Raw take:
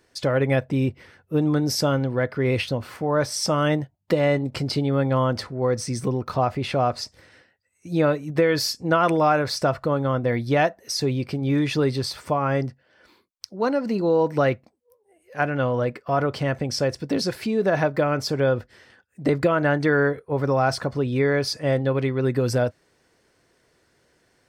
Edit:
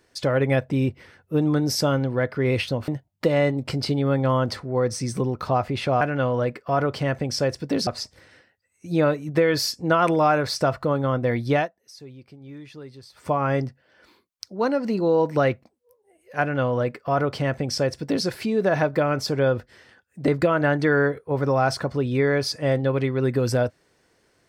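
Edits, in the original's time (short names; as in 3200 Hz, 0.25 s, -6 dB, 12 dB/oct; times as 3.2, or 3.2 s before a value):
2.88–3.75 cut
10.56–12.31 dip -19 dB, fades 0.15 s
15.41–17.27 copy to 6.88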